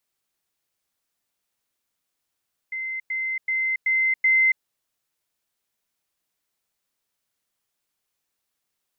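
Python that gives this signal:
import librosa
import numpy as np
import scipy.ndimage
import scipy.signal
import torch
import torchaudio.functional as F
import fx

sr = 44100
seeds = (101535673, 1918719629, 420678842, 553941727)

y = fx.level_ladder(sr, hz=2070.0, from_db=-27.0, step_db=3.0, steps=5, dwell_s=0.28, gap_s=0.1)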